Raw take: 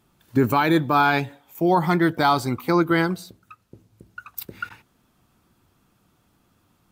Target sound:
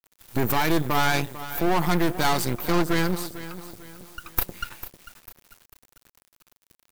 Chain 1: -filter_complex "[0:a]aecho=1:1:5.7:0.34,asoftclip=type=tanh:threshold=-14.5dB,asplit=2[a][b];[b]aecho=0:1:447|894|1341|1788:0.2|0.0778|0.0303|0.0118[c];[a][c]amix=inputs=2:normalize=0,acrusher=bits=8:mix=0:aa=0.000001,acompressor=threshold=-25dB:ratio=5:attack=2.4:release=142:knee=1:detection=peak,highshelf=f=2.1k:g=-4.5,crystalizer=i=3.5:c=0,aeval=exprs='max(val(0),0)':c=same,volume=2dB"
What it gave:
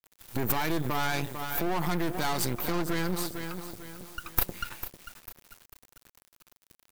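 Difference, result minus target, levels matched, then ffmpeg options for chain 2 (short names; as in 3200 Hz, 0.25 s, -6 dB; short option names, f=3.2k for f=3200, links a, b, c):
compressor: peak gain reduction +8.5 dB
-filter_complex "[0:a]aecho=1:1:5.7:0.34,asoftclip=type=tanh:threshold=-14.5dB,asplit=2[a][b];[b]aecho=0:1:447|894|1341|1788:0.2|0.0778|0.0303|0.0118[c];[a][c]amix=inputs=2:normalize=0,acrusher=bits=8:mix=0:aa=0.000001,highshelf=f=2.1k:g=-4.5,crystalizer=i=3.5:c=0,aeval=exprs='max(val(0),0)':c=same,volume=2dB"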